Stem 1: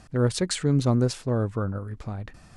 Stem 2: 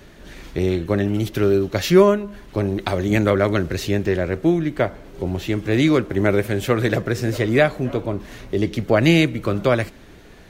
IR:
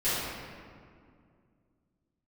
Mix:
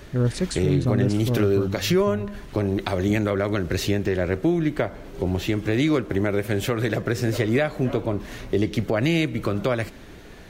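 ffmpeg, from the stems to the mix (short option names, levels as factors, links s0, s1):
-filter_complex "[0:a]lowshelf=f=320:g=8.5,volume=0.631[s0];[1:a]acompressor=threshold=0.112:ratio=2,volume=1.19[s1];[s0][s1]amix=inputs=2:normalize=0,alimiter=limit=0.282:level=0:latency=1:release=201"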